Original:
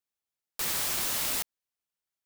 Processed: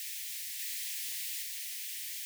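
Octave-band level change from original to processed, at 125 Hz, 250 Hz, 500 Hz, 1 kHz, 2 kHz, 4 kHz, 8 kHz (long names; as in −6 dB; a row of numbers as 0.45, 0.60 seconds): below −40 dB, below −40 dB, below −40 dB, below −40 dB, −6.5 dB, −5.0 dB, −5.0 dB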